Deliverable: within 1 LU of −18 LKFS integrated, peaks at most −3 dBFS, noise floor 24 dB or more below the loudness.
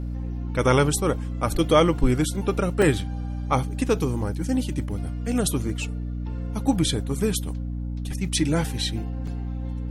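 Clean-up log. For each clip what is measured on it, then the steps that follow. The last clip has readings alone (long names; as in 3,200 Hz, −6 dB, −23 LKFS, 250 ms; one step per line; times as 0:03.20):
number of dropouts 2; longest dropout 3.6 ms; mains hum 60 Hz; hum harmonics up to 300 Hz; level of the hum −27 dBFS; integrated loudness −25.0 LKFS; sample peak −5.0 dBFS; target loudness −18.0 LKFS
→ repair the gap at 0:02.82/0:09.27, 3.6 ms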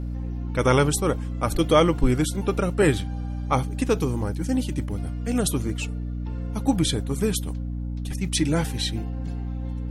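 number of dropouts 0; mains hum 60 Hz; hum harmonics up to 300 Hz; level of the hum −27 dBFS
→ hum removal 60 Hz, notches 5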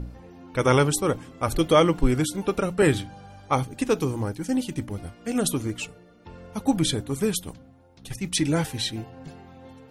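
mains hum none found; integrated loudness −25.0 LKFS; sample peak −6.0 dBFS; target loudness −18.0 LKFS
→ level +7 dB
brickwall limiter −3 dBFS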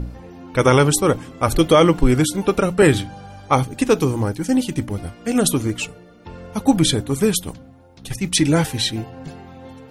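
integrated loudness −18.5 LKFS; sample peak −3.0 dBFS; background noise floor −45 dBFS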